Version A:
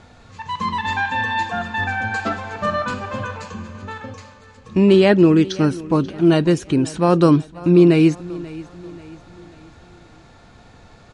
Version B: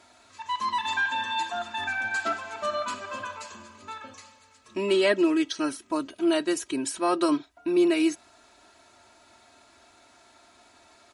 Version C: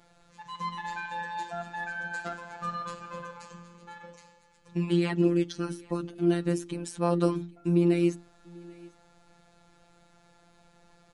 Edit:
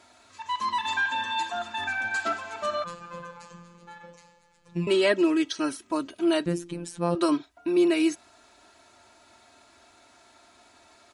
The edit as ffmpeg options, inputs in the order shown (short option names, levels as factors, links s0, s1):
-filter_complex "[2:a]asplit=2[s0][s1];[1:a]asplit=3[s2][s3][s4];[s2]atrim=end=2.842[s5];[s0]atrim=start=2.838:end=4.872[s6];[s3]atrim=start=4.868:end=6.462[s7];[s1]atrim=start=6.458:end=7.152[s8];[s4]atrim=start=7.148[s9];[s5][s6]acrossfade=d=0.004:c1=hsin:c2=hsin[s10];[s10][s7]acrossfade=d=0.004:c1=hsin:c2=hsin[s11];[s11][s8]acrossfade=d=0.004:c1=hsin:c2=hsin[s12];[s12][s9]acrossfade=d=0.004:c1=hsin:c2=hsin"